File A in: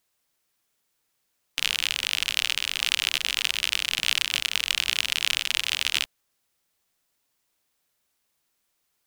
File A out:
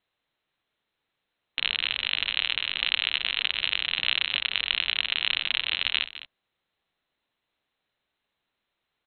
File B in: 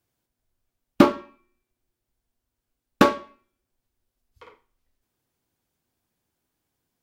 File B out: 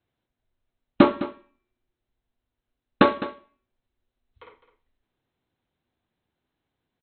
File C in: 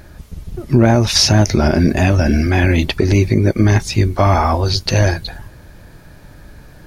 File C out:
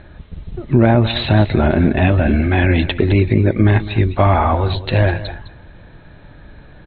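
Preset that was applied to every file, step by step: Chebyshev low-pass 4100 Hz, order 10; echo 0.208 s -14.5 dB

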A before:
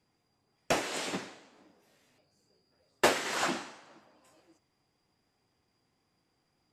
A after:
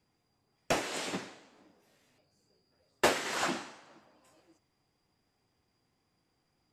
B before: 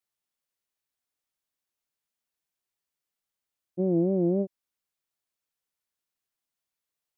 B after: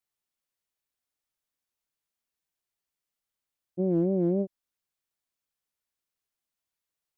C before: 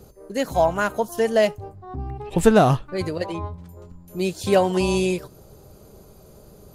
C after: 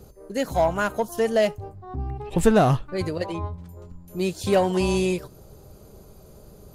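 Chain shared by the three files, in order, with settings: low shelf 90 Hz +4.5 dB; in parallel at -7 dB: hard clip -17.5 dBFS; on the sum: gain -4.5 dB

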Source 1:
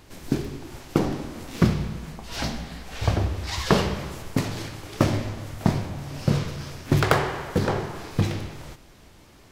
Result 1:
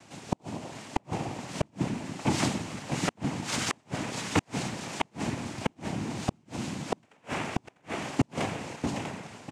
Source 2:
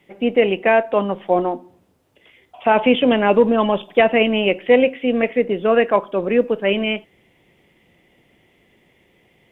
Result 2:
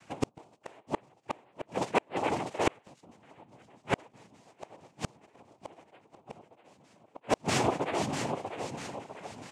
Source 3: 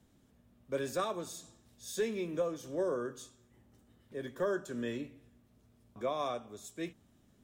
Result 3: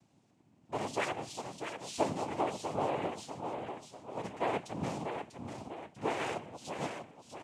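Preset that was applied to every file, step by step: feedback echo 0.645 s, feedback 46%, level -6.5 dB; noise vocoder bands 4; flipped gate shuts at -12 dBFS, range -41 dB

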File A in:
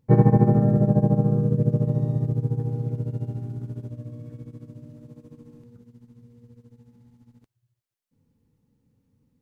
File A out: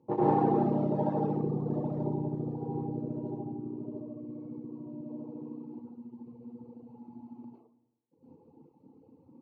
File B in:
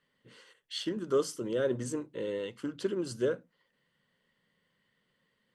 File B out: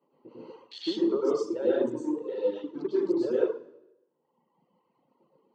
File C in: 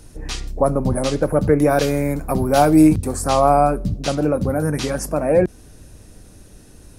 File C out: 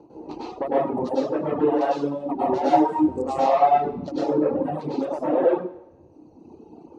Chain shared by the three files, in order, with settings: Wiener smoothing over 25 samples; upward compressor, threshold -35 dBFS; expander -45 dBFS; soft clip -14.5 dBFS; compressor, threshold -24 dBFS; plate-style reverb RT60 0.94 s, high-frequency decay 0.9×, pre-delay 90 ms, DRR -9 dB; reverb removal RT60 1.9 s; speaker cabinet 310–5400 Hz, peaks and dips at 330 Hz +9 dB, 890 Hz +10 dB, 1500 Hz -9 dB, 2200 Hz -7 dB, 3200 Hz -6 dB, 4900 Hz -5 dB; gain -1.5 dB

